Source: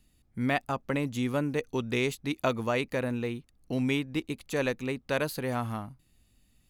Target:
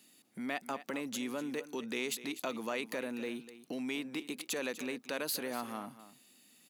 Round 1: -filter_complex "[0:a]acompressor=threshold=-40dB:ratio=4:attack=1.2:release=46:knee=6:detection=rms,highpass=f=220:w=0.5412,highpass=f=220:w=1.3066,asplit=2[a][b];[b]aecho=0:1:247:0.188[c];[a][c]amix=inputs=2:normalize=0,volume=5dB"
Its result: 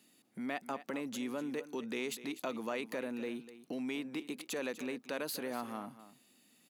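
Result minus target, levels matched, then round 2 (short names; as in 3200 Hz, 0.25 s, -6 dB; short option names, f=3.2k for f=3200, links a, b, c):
4000 Hz band -3.0 dB
-filter_complex "[0:a]acompressor=threshold=-40dB:ratio=4:attack=1.2:release=46:knee=6:detection=rms,highpass=f=220:w=0.5412,highpass=f=220:w=1.3066,highshelf=f=2k:g=5.5,asplit=2[a][b];[b]aecho=0:1:247:0.188[c];[a][c]amix=inputs=2:normalize=0,volume=5dB"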